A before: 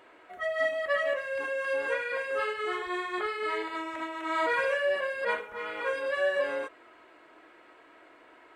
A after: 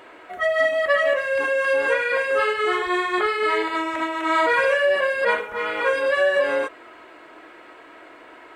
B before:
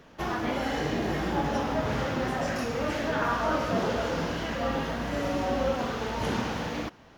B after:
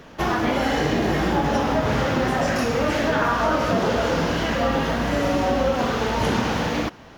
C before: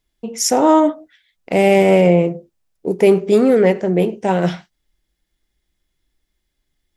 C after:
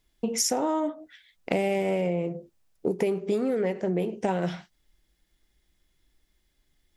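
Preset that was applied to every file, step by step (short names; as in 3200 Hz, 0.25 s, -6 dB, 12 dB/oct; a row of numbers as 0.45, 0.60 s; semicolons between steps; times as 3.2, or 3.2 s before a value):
compressor 12:1, threshold -25 dBFS; normalise peaks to -9 dBFS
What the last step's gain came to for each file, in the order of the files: +10.5, +9.0, +2.0 dB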